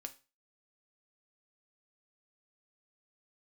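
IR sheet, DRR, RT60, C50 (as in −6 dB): 6.0 dB, 0.30 s, 16.5 dB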